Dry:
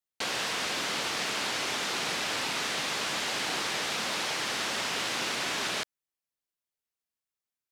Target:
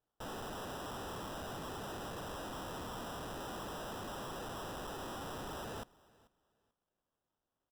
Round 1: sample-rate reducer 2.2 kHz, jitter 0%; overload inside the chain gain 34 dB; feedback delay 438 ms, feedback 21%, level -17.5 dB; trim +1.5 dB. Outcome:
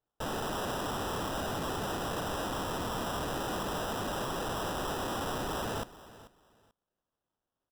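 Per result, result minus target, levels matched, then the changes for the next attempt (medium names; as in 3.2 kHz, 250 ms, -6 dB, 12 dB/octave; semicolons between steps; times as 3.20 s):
echo-to-direct +6 dB; overload inside the chain: distortion -4 dB
change: feedback delay 438 ms, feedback 21%, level -23.5 dB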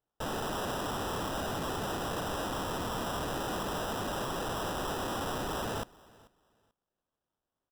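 overload inside the chain: distortion -4 dB
change: overload inside the chain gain 44.5 dB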